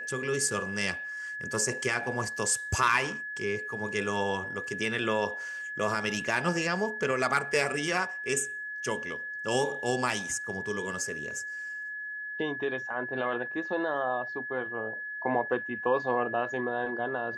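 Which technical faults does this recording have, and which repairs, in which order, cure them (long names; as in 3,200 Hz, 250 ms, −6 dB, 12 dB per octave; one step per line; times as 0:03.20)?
whistle 1,700 Hz −35 dBFS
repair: notch filter 1,700 Hz, Q 30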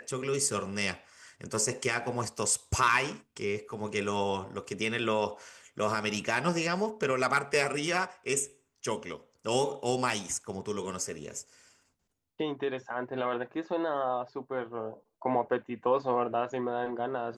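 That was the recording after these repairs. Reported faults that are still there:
none of them is left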